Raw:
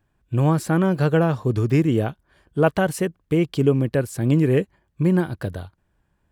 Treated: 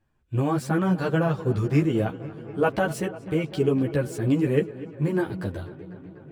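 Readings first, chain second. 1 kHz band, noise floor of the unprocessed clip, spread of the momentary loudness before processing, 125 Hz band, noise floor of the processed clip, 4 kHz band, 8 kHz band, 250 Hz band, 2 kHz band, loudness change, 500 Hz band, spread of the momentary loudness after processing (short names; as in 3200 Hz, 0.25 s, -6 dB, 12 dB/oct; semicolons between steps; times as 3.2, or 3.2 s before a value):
-2.5 dB, -70 dBFS, 10 LU, -5.0 dB, -49 dBFS, -3.5 dB, -5.5 dB, -3.5 dB, -2.5 dB, -4.0 dB, -3.5 dB, 13 LU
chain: median filter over 3 samples; darkening echo 0.247 s, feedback 80%, low-pass 4700 Hz, level -17.5 dB; ensemble effect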